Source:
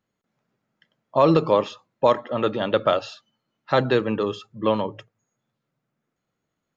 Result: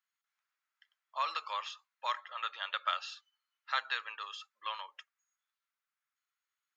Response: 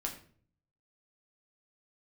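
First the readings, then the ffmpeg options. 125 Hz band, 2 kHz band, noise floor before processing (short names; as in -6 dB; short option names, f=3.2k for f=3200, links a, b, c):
under -40 dB, -6.0 dB, -81 dBFS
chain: -af "highpass=f=1.2k:w=0.5412,highpass=f=1.2k:w=1.3066,volume=-5.5dB"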